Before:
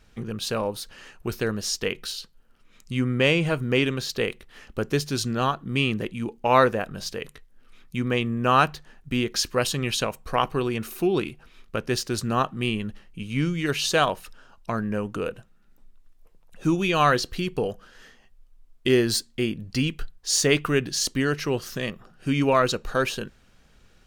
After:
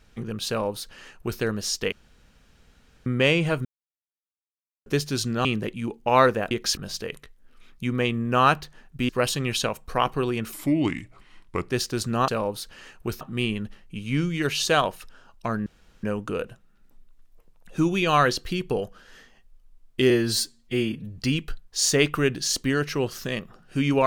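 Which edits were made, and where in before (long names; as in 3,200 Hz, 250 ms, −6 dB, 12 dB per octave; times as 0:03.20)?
0:00.48–0:01.41: duplicate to 0:12.45
0:01.92–0:03.06: fill with room tone
0:03.65–0:04.86: silence
0:05.45–0:05.83: remove
0:09.21–0:09.47: move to 0:06.89
0:10.91–0:11.87: play speed 82%
0:14.90: splice in room tone 0.37 s
0:18.97–0:19.69: time-stretch 1.5×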